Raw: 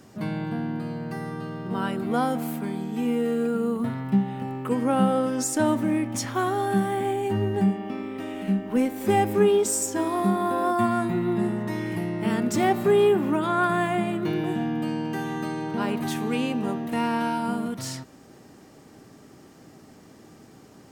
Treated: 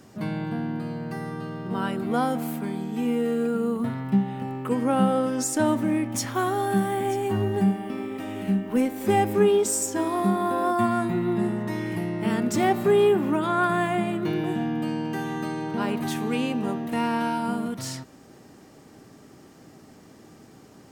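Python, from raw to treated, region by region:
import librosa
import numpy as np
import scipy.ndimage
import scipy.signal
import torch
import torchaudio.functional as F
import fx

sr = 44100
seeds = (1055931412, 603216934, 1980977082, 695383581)

y = fx.chain(x, sr, fx.high_shelf(hz=11000.0, db=7.0),
    fx.echo_single(ms=935, db=-17.0), at=(6.11, 8.81))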